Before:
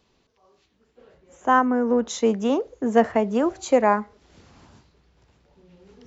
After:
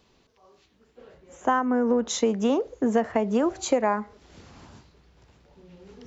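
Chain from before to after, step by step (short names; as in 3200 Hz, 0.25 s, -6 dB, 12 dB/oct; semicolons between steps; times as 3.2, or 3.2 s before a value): compressor 6:1, threshold -22 dBFS, peak gain reduction 11 dB; gain +3 dB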